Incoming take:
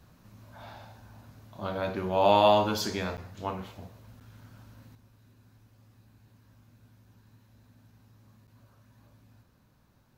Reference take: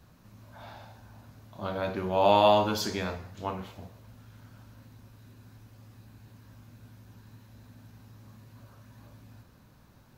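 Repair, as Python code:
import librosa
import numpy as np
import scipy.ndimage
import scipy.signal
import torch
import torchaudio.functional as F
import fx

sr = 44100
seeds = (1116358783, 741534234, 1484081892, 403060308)

y = fx.fix_interpolate(x, sr, at_s=(3.17, 4.2, 8.47), length_ms=8.3)
y = fx.fix_level(y, sr, at_s=4.95, step_db=7.0)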